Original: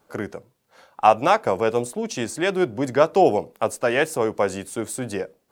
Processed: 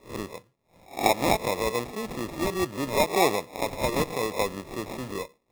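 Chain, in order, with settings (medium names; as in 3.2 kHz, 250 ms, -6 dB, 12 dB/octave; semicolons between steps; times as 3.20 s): reverse spectral sustain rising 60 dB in 0.32 s; sample-and-hold 29×; trim -6.5 dB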